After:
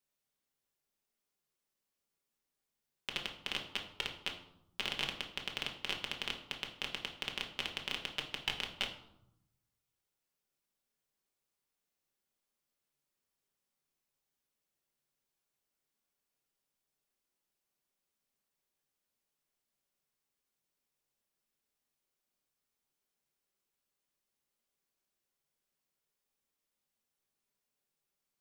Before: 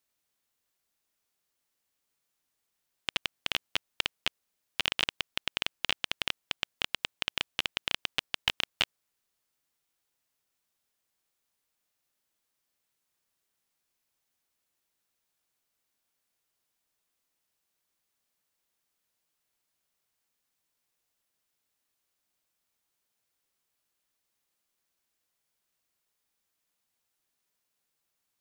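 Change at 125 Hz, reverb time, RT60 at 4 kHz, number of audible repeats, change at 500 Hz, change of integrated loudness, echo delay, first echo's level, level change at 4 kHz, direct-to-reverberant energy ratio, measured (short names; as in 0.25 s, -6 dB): -3.0 dB, 0.80 s, 0.55 s, none, -3.0 dB, -6.5 dB, none, none, -6.5 dB, 0.5 dB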